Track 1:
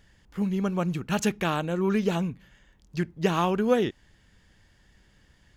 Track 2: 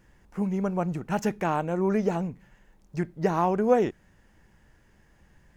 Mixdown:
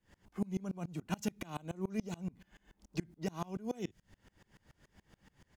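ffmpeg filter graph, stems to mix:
-filter_complex "[0:a]acompressor=threshold=-31dB:ratio=6,volume=-1dB[a];[1:a]highpass=f=79:w=0.5412,highpass=f=79:w=1.3066,bandreject=f=1.7k:w=10,volume=-1,adelay=2.5,volume=3dB[b];[a][b]amix=inputs=2:normalize=0,acrossover=split=160|3000[c][d][e];[d]acompressor=threshold=-35dB:ratio=5[f];[c][f][e]amix=inputs=3:normalize=0,aeval=exprs='val(0)*pow(10,-28*if(lt(mod(-7*n/s,1),2*abs(-7)/1000),1-mod(-7*n/s,1)/(2*abs(-7)/1000),(mod(-7*n/s,1)-2*abs(-7)/1000)/(1-2*abs(-7)/1000))/20)':c=same"

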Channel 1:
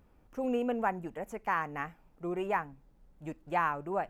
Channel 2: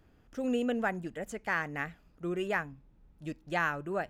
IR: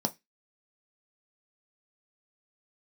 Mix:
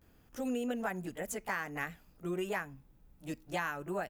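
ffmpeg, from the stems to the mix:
-filter_complex "[0:a]volume=-8.5dB[a];[1:a]aemphasis=mode=production:type=50fm,adelay=16,volume=-1dB[b];[a][b]amix=inputs=2:normalize=0,acompressor=threshold=-32dB:ratio=4"

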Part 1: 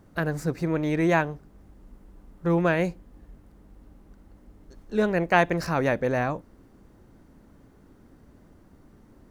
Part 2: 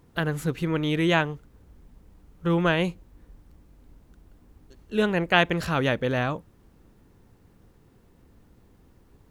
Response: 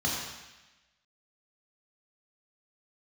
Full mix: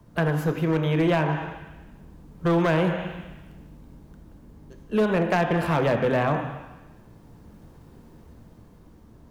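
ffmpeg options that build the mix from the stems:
-filter_complex "[0:a]asoftclip=type=tanh:threshold=-14dB,volume=-1.5dB,asplit=2[a][b];[b]volume=-14dB[c];[1:a]equalizer=f=860:w=3.6:g=6,dynaudnorm=f=450:g=7:m=10dB,volume=-1.5dB,asplit=2[d][e];[e]volume=-16dB[f];[2:a]atrim=start_sample=2205[g];[c][f]amix=inputs=2:normalize=0[h];[h][g]afir=irnorm=-1:irlink=0[i];[a][d][i]amix=inputs=3:normalize=0,acrossover=split=90|290|1900[j][k][l][m];[j]acompressor=threshold=-48dB:ratio=4[n];[k]acompressor=threshold=-26dB:ratio=4[o];[l]acompressor=threshold=-19dB:ratio=4[p];[m]acompressor=threshold=-37dB:ratio=4[q];[n][o][p][q]amix=inputs=4:normalize=0,volume=16dB,asoftclip=hard,volume=-16dB"

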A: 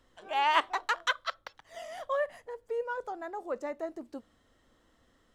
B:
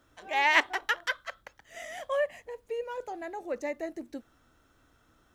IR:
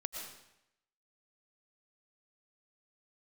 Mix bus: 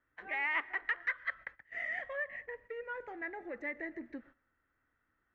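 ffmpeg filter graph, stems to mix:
-filter_complex "[0:a]volume=-15dB[a];[1:a]equalizer=f=650:t=o:w=0.24:g=-4.5,acompressor=threshold=-33dB:ratio=6,asoftclip=type=tanh:threshold=-29dB,volume=-5.5dB,asplit=2[b][c];[c]volume=-14.5dB[d];[2:a]atrim=start_sample=2205[e];[d][e]afir=irnorm=-1:irlink=0[f];[a][b][f]amix=inputs=3:normalize=0,agate=range=-14dB:threshold=-58dB:ratio=16:detection=peak,lowpass=f=1.9k:t=q:w=4.4"

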